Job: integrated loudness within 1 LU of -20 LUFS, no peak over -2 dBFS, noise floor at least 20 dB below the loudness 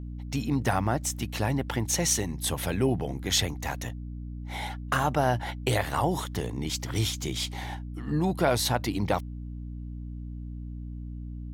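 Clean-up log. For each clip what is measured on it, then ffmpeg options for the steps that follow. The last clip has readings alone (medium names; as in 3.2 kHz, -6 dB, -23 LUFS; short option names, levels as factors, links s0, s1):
hum 60 Hz; highest harmonic 300 Hz; hum level -35 dBFS; loudness -28.5 LUFS; peak level -10.0 dBFS; loudness target -20.0 LUFS
-> -af "bandreject=f=60:t=h:w=6,bandreject=f=120:t=h:w=6,bandreject=f=180:t=h:w=6,bandreject=f=240:t=h:w=6,bandreject=f=300:t=h:w=6"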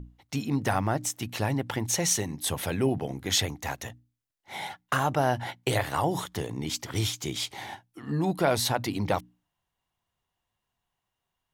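hum not found; loudness -29.0 LUFS; peak level -10.0 dBFS; loudness target -20.0 LUFS
-> -af "volume=2.82,alimiter=limit=0.794:level=0:latency=1"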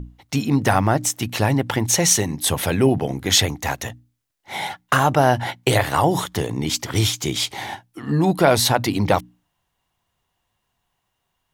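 loudness -20.0 LUFS; peak level -2.0 dBFS; noise floor -75 dBFS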